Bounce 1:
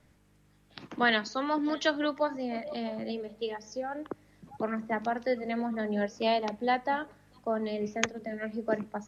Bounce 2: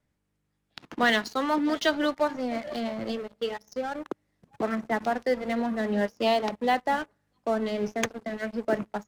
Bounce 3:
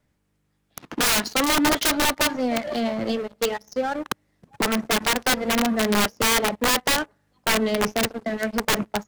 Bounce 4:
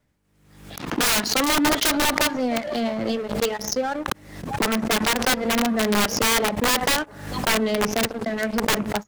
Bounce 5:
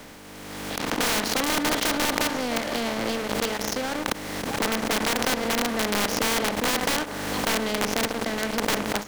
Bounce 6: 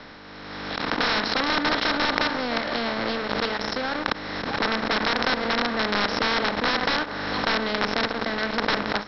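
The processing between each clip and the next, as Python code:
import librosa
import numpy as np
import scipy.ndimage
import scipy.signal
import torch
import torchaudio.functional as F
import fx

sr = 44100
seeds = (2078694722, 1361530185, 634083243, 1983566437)

y1 = fx.leveller(x, sr, passes=3)
y1 = y1 * librosa.db_to_amplitude(-7.5)
y2 = (np.mod(10.0 ** (21.0 / 20.0) * y1 + 1.0, 2.0) - 1.0) / 10.0 ** (21.0 / 20.0)
y2 = y2 * librosa.db_to_amplitude(6.5)
y3 = fx.pre_swell(y2, sr, db_per_s=66.0)
y4 = fx.bin_compress(y3, sr, power=0.4)
y4 = y4 * librosa.db_to_amplitude(-9.5)
y5 = scipy.signal.sosfilt(scipy.signal.cheby1(6, 6, 5500.0, 'lowpass', fs=sr, output='sos'), y4)
y5 = y5 * librosa.db_to_amplitude(5.0)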